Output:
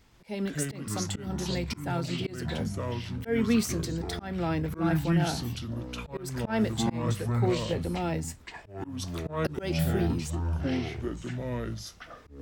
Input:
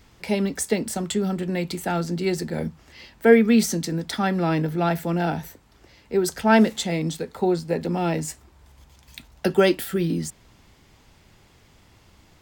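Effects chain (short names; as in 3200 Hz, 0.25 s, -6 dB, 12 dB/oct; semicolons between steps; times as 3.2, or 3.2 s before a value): echoes that change speed 0.142 s, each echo -6 st, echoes 3; auto swell 0.199 s; gain -7 dB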